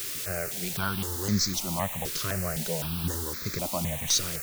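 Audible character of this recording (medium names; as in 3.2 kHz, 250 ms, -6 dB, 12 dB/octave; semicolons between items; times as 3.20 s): a quantiser's noise floor 6-bit, dither triangular; notches that jump at a steady rate 3.9 Hz 210–2900 Hz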